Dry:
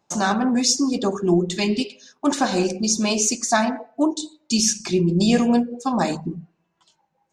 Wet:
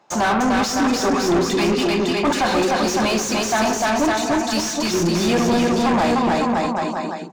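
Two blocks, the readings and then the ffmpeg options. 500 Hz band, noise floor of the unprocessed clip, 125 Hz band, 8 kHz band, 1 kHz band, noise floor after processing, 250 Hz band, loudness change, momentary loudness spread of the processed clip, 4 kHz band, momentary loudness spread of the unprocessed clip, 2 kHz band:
+5.0 dB, -72 dBFS, 0.0 dB, -3.0 dB, +6.5 dB, -26 dBFS, +1.5 dB, +2.0 dB, 3 LU, +2.0 dB, 7 LU, +6.5 dB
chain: -filter_complex "[0:a]aecho=1:1:300|555|771.8|956|1113:0.631|0.398|0.251|0.158|0.1,acrossover=split=100[a][b];[a]acrusher=samples=36:mix=1:aa=0.000001[c];[c][b]amix=inputs=2:normalize=0,asplit=2[d][e];[e]highpass=f=720:p=1,volume=30dB,asoftclip=type=tanh:threshold=-3dB[f];[d][f]amix=inputs=2:normalize=0,lowpass=f=1.8k:p=1,volume=-6dB,volume=-6.5dB"

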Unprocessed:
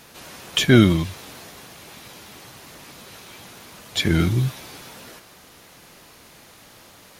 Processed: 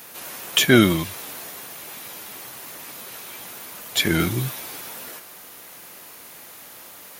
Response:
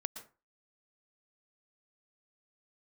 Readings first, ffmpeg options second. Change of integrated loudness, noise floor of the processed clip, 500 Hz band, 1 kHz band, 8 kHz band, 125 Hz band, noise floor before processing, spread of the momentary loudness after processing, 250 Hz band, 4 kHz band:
-3.5 dB, -43 dBFS, +0.5 dB, +3.0 dB, +5.5 dB, -5.5 dB, -49 dBFS, 23 LU, -1.5 dB, +2.0 dB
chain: -filter_complex "[0:a]aemphasis=mode=production:type=bsi,asplit=2[a][b];[1:a]atrim=start_sample=2205,atrim=end_sample=3528,lowpass=3.2k[c];[b][c]afir=irnorm=-1:irlink=0,volume=0.5dB[d];[a][d]amix=inputs=2:normalize=0,volume=-2.5dB"

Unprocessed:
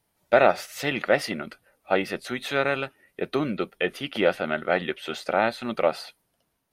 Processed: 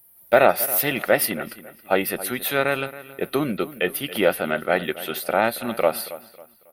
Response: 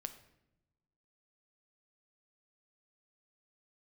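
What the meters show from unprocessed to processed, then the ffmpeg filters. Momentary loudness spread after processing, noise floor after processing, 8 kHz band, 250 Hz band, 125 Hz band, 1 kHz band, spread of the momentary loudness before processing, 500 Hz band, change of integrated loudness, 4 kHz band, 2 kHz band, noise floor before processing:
13 LU, -54 dBFS, +13.5 dB, +2.5 dB, +2.5 dB, +2.5 dB, 10 LU, +2.5 dB, +3.5 dB, +2.5 dB, +2.5 dB, -74 dBFS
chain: -filter_complex "[0:a]aexciter=amount=14.1:drive=6:freq=10k,asplit=2[a][b];[b]adelay=274,lowpass=f=4.1k:p=1,volume=-16dB,asplit=2[c][d];[d]adelay=274,lowpass=f=4.1k:p=1,volume=0.33,asplit=2[e][f];[f]adelay=274,lowpass=f=4.1k:p=1,volume=0.33[g];[c][e][g]amix=inputs=3:normalize=0[h];[a][h]amix=inputs=2:normalize=0,volume=2.5dB"

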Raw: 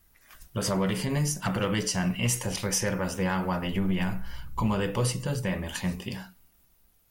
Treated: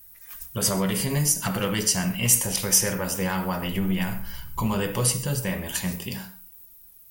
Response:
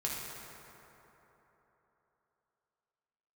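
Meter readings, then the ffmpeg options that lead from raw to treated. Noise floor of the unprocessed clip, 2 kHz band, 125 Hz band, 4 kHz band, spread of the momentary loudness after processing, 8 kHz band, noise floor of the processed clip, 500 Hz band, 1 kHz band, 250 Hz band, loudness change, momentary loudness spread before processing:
-64 dBFS, +2.5 dB, +1.5 dB, +5.5 dB, 15 LU, +9.5 dB, -50 dBFS, +1.0 dB, +1.5 dB, +1.5 dB, +5.0 dB, 6 LU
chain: -filter_complex "[0:a]aemphasis=mode=production:type=50fm,asplit=2[a][b];[1:a]atrim=start_sample=2205,atrim=end_sample=6615[c];[b][c]afir=irnorm=-1:irlink=0,volume=-8dB[d];[a][d]amix=inputs=2:normalize=0,volume=-1.5dB"

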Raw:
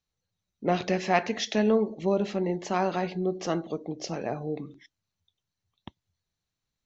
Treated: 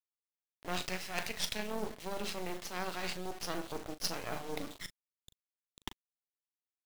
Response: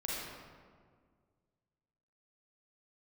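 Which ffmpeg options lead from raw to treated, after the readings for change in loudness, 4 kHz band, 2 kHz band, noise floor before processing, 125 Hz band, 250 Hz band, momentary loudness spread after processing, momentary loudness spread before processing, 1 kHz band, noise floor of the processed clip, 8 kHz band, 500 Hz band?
-11.0 dB, -1.5 dB, -5.5 dB, under -85 dBFS, -13.5 dB, -15.0 dB, 12 LU, 10 LU, -11.0 dB, under -85 dBFS, n/a, -14.5 dB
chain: -filter_complex "[0:a]highpass=170,tiltshelf=f=850:g=-6.5,areverse,acompressor=threshold=-40dB:ratio=10,areverse,lowpass=f=5.2k:t=q:w=1.8,acrusher=bits=6:dc=4:mix=0:aa=0.000001,volume=30dB,asoftclip=hard,volume=-30dB,tremolo=f=180:d=0.462,asplit=2[a][b];[b]adelay=39,volume=-12.5dB[c];[a][c]amix=inputs=2:normalize=0,volume=9.5dB"

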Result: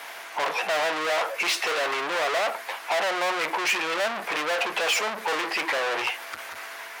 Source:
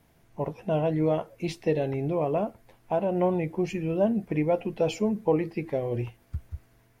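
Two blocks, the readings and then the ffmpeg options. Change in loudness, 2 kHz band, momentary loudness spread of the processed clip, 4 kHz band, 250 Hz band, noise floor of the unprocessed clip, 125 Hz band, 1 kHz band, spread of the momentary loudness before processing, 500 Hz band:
+2.5 dB, +19.0 dB, 10 LU, +18.5 dB, -12.0 dB, -62 dBFS, under -25 dB, +8.0 dB, 11 LU, -2.5 dB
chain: -filter_complex "[0:a]asplit=2[a][b];[b]highpass=f=720:p=1,volume=41dB,asoftclip=type=tanh:threshold=-11.5dB[c];[a][c]amix=inputs=2:normalize=0,lowpass=f=2.8k:p=1,volume=-6dB,highpass=950"

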